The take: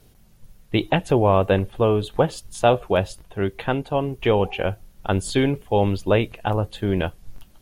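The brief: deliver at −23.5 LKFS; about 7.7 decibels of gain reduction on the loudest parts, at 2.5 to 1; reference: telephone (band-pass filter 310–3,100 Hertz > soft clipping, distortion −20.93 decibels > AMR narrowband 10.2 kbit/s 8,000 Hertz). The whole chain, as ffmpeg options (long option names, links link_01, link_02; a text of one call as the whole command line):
ffmpeg -i in.wav -af "acompressor=threshold=-24dB:ratio=2.5,highpass=310,lowpass=3100,asoftclip=threshold=-14.5dB,volume=8dB" -ar 8000 -c:a libopencore_amrnb -b:a 10200 out.amr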